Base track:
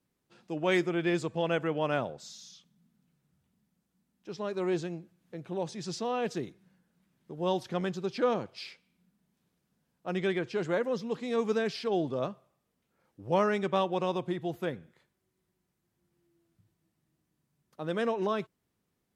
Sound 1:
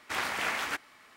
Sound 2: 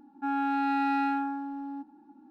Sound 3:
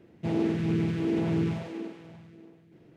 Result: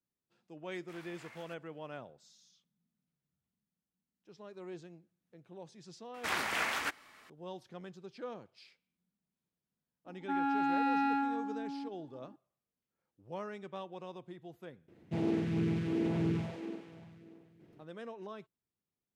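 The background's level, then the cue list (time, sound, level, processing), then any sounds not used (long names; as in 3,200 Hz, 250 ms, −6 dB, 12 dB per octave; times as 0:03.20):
base track −15.5 dB
0:00.78: mix in 1 −16 dB + noise reduction from a noise print of the clip's start 8 dB
0:06.14: mix in 1 −2 dB
0:10.06: mix in 2 −3.5 dB
0:14.88: mix in 3 −5 dB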